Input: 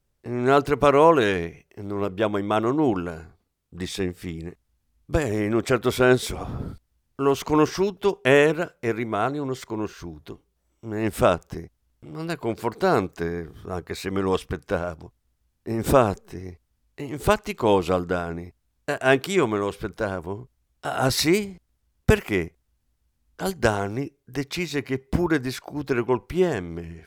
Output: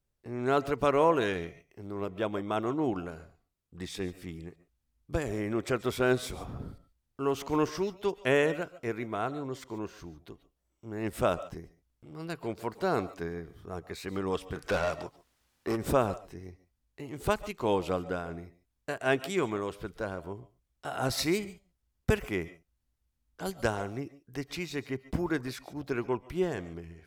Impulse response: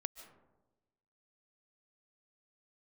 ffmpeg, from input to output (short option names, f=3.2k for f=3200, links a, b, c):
-filter_complex "[0:a]asplit=3[a][b][c];[a]afade=t=out:st=14.55:d=0.02[d];[b]asplit=2[e][f];[f]highpass=f=720:p=1,volume=25dB,asoftclip=type=tanh:threshold=-12dB[g];[e][g]amix=inputs=2:normalize=0,lowpass=f=5.9k:p=1,volume=-6dB,afade=t=in:st=14.55:d=0.02,afade=t=out:st=15.75:d=0.02[h];[c]afade=t=in:st=15.75:d=0.02[i];[d][h][i]amix=inputs=3:normalize=0[j];[1:a]atrim=start_sample=2205,atrim=end_sample=6615[k];[j][k]afir=irnorm=-1:irlink=0,volume=-6dB"